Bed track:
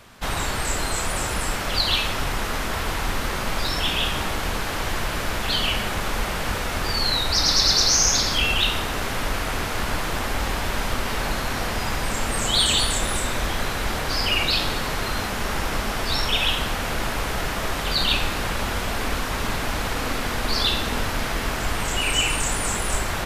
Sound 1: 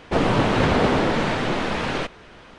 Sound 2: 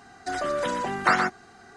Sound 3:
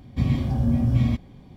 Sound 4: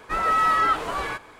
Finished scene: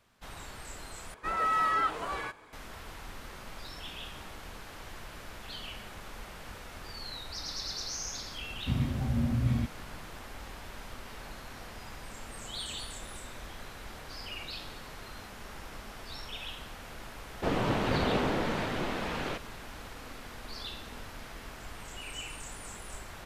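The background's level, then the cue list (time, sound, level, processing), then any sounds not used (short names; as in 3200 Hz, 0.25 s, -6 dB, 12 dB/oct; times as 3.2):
bed track -19.5 dB
1.14 replace with 4 -7.5 dB
8.5 add 3 -8 dB
17.31 add 1 -10 dB
not used: 2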